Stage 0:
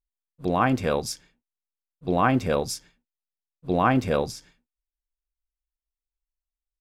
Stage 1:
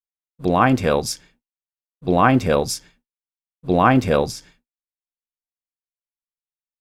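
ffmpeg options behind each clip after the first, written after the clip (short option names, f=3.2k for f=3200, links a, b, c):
-af "agate=range=-33dB:threshold=-57dB:ratio=3:detection=peak,volume=6dB"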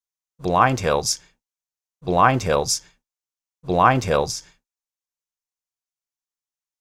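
-af "equalizer=f=250:t=o:w=0.67:g=-8,equalizer=f=1k:t=o:w=0.67:g=4,equalizer=f=6.3k:t=o:w=0.67:g=9,volume=-1.5dB"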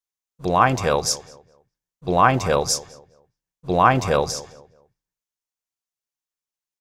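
-filter_complex "[0:a]asplit=2[a][b];[b]adelay=207,lowpass=f=1.8k:p=1,volume=-17dB,asplit=2[c][d];[d]adelay=207,lowpass=f=1.8k:p=1,volume=0.33,asplit=2[e][f];[f]adelay=207,lowpass=f=1.8k:p=1,volume=0.33[g];[a][c][e][g]amix=inputs=4:normalize=0"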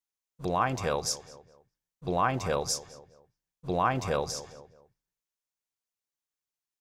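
-af "acompressor=threshold=-35dB:ratio=1.5,volume=-2.5dB"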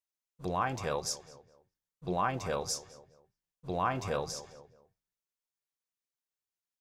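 -af "flanger=delay=5:depth=5.9:regen=70:speed=0.9:shape=sinusoidal"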